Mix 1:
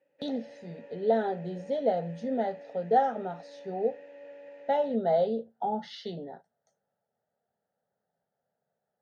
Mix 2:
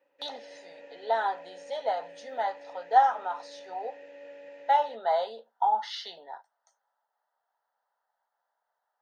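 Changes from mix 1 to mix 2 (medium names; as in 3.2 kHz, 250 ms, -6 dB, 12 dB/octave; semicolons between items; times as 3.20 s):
speech: add resonant high-pass 1 kHz, resonance Q 7.8; master: add treble shelf 2.5 kHz +9 dB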